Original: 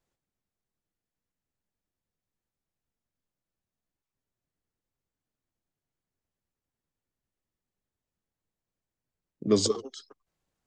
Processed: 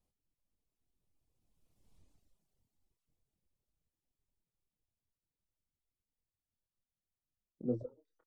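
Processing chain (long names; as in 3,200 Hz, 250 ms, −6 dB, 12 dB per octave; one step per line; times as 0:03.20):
source passing by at 0:02.60, 37 m/s, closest 8.8 metres
low-shelf EQ 97 Hz +10 dB
treble cut that deepens with the level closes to 390 Hz, closed at −64 dBFS
change of speed 1.29×
parametric band 1,600 Hz −10 dB 1 octave
double-tracking delay 24 ms −7 dB
reverb reduction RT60 1.1 s
level +17 dB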